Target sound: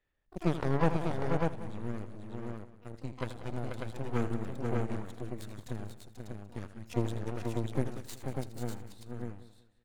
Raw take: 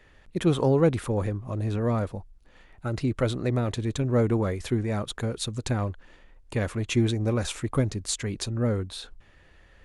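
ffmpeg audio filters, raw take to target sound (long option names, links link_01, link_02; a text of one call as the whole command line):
ffmpeg -i in.wav -filter_complex "[0:a]aeval=exprs='0.316*(cos(1*acos(clip(val(0)/0.316,-1,1)))-cos(1*PI/2))+0.1*(cos(3*acos(clip(val(0)/0.316,-1,1)))-cos(3*PI/2))+0.0316*(cos(4*acos(clip(val(0)/0.316,-1,1)))-cos(4*PI/2))+0.00631*(cos(6*acos(clip(val(0)/0.316,-1,1)))-cos(6*PI/2))':channel_layout=same,asplit=2[link_01][link_02];[link_02]asetrate=88200,aresample=44100,atempo=0.5,volume=-15dB[link_03];[link_01][link_03]amix=inputs=2:normalize=0,asplit=2[link_04][link_05];[link_05]aecho=0:1:81|486|594:0.237|0.473|0.596[link_06];[link_04][link_06]amix=inputs=2:normalize=0,aphaser=in_gain=1:out_gain=1:delay=1.4:decay=0.22:speed=0.41:type=sinusoidal,asplit=2[link_07][link_08];[link_08]aecho=0:1:187|374|561:0.158|0.046|0.0133[link_09];[link_07][link_09]amix=inputs=2:normalize=0,asoftclip=type=tanh:threshold=-9dB,volume=-2dB" out.wav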